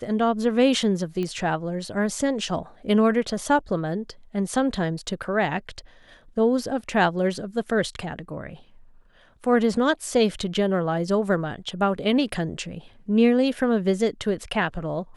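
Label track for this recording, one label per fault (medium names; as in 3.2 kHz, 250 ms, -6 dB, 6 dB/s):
1.230000	1.230000	pop -18 dBFS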